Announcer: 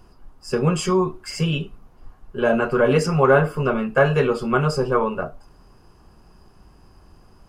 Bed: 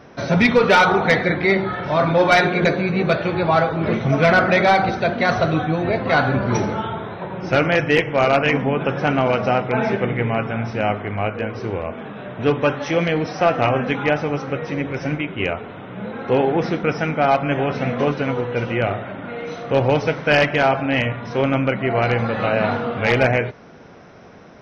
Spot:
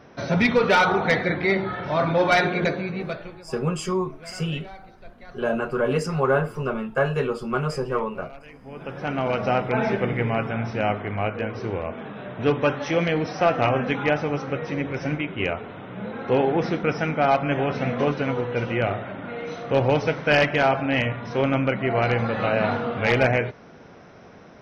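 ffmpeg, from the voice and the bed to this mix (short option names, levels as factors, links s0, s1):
-filter_complex "[0:a]adelay=3000,volume=0.531[s0];[1:a]volume=10.6,afade=t=out:st=2.51:d=0.93:silence=0.0668344,afade=t=in:st=8.61:d=0.99:silence=0.0562341[s1];[s0][s1]amix=inputs=2:normalize=0"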